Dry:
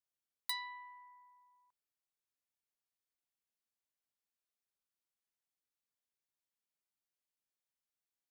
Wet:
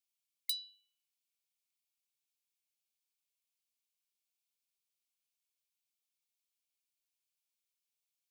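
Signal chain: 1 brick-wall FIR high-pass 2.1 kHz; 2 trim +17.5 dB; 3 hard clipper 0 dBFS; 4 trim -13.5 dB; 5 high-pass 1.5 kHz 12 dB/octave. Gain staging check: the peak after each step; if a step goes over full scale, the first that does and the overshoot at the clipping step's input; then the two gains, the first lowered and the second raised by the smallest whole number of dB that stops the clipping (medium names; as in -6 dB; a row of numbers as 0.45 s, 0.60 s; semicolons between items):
-23.5 dBFS, -6.0 dBFS, -6.0 dBFS, -19.5 dBFS, -18.5 dBFS; nothing clips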